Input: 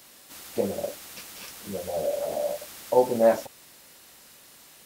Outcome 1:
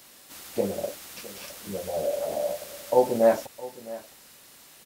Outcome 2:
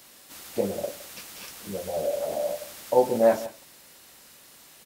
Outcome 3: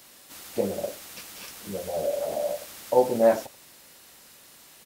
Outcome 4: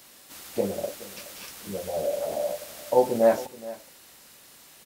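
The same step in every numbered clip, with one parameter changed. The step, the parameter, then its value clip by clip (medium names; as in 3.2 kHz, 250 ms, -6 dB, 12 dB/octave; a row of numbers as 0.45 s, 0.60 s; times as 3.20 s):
delay, time: 662 ms, 164 ms, 83 ms, 423 ms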